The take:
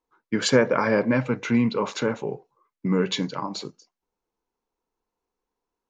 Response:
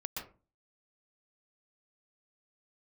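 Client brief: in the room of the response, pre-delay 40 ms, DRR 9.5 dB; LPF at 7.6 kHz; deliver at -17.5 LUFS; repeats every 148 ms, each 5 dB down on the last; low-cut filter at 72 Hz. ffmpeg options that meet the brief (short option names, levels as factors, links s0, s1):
-filter_complex "[0:a]highpass=72,lowpass=7600,aecho=1:1:148|296|444|592|740|888|1036:0.562|0.315|0.176|0.0988|0.0553|0.031|0.0173,asplit=2[s0][s1];[1:a]atrim=start_sample=2205,adelay=40[s2];[s1][s2]afir=irnorm=-1:irlink=0,volume=0.316[s3];[s0][s3]amix=inputs=2:normalize=0,volume=1.78"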